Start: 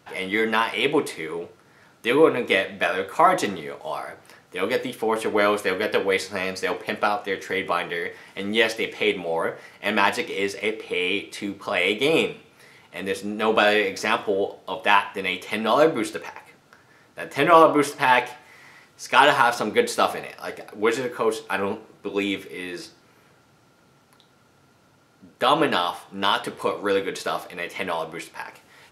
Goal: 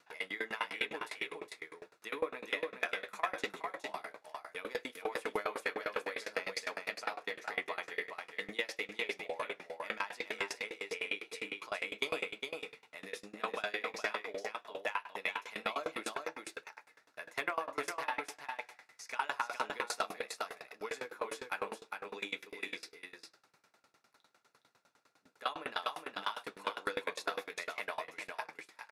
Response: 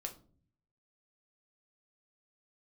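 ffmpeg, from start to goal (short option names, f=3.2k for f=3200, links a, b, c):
-filter_complex "[0:a]highpass=f=1.1k:p=1,highshelf=f=9.2k:g=-7,bandreject=f=3.1k:w=8.3,acompressor=threshold=-25dB:ratio=6,asoftclip=type=hard:threshold=-15.5dB,flanger=delay=4.3:depth=7.9:regen=-67:speed=1.1:shape=sinusoidal,asplit=2[a][b];[b]aecho=0:1:415:0.596[c];[a][c]amix=inputs=2:normalize=0,aeval=exprs='val(0)*pow(10,-25*if(lt(mod(9.9*n/s,1),2*abs(9.9)/1000),1-mod(9.9*n/s,1)/(2*abs(9.9)/1000),(mod(9.9*n/s,1)-2*abs(9.9)/1000)/(1-2*abs(9.9)/1000))/20)':c=same,volume=3dB"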